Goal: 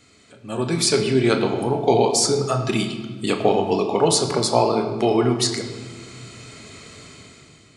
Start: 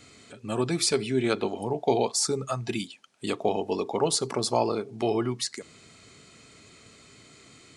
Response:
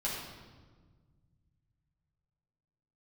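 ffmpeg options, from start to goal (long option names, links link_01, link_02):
-filter_complex "[0:a]dynaudnorm=framelen=150:gausssize=9:maxgain=12.5dB,asplit=2[link_01][link_02];[1:a]atrim=start_sample=2205,lowpass=8600,adelay=24[link_03];[link_02][link_03]afir=irnorm=-1:irlink=0,volume=-9dB[link_04];[link_01][link_04]amix=inputs=2:normalize=0,volume=-2.5dB"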